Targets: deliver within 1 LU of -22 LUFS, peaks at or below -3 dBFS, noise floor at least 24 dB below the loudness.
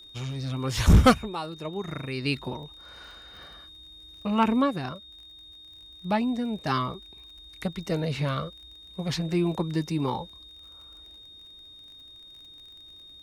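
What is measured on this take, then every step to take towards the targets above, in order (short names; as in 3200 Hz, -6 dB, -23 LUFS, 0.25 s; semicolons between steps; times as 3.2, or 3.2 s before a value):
ticks 37/s; steady tone 3700 Hz; tone level -46 dBFS; loudness -27.0 LUFS; peak -10.0 dBFS; loudness target -22.0 LUFS
-> de-click; notch 3700 Hz, Q 30; gain +5 dB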